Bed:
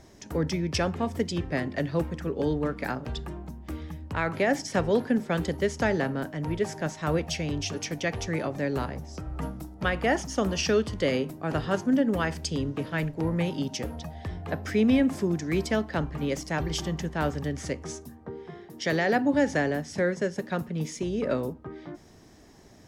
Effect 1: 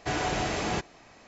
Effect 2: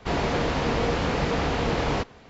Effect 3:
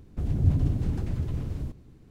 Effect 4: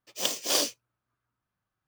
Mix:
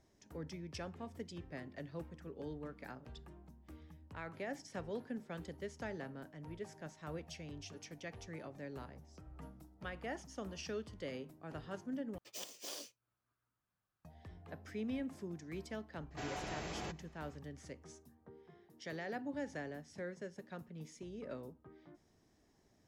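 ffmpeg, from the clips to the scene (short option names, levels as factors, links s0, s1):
-filter_complex "[0:a]volume=0.119[s0];[4:a]acompressor=threshold=0.0178:ratio=10:attack=1.8:release=495:knee=1:detection=peak[s1];[s0]asplit=2[s2][s3];[s2]atrim=end=12.184[s4];[s1]atrim=end=1.87,asetpts=PTS-STARTPTS,volume=0.562[s5];[s3]atrim=start=14.046[s6];[1:a]atrim=end=1.27,asetpts=PTS-STARTPTS,volume=0.188,afade=t=in:d=0.004:c=hsin,afade=t=out:st=1.266:d=0.004:c=hsin,adelay=16110[s7];[s4][s5]acrossfade=d=0.004:c1=hsin:c2=hsin[s8];[s8][s6]acrossfade=d=0.004:c1=hsin:c2=hsin[s9];[s9][s7]amix=inputs=2:normalize=0"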